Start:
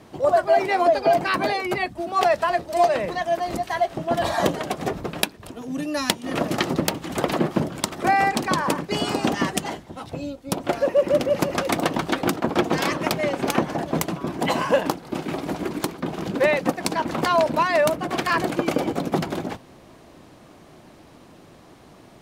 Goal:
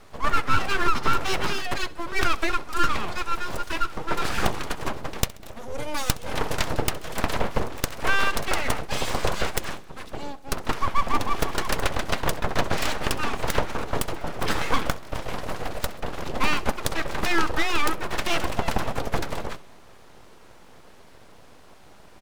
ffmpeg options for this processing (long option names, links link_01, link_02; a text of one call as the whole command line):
ffmpeg -i in.wav -filter_complex "[0:a]aeval=exprs='abs(val(0))':channel_layout=same,asplit=2[link_01][link_02];[link_02]aecho=0:1:66|132|198|264:0.0891|0.0463|0.0241|0.0125[link_03];[link_01][link_03]amix=inputs=2:normalize=0" out.wav